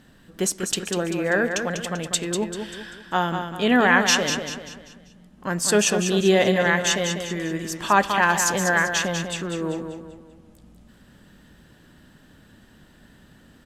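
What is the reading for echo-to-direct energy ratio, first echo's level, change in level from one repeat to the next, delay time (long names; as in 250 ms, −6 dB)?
−6.0 dB, −7.0 dB, −7.5 dB, 195 ms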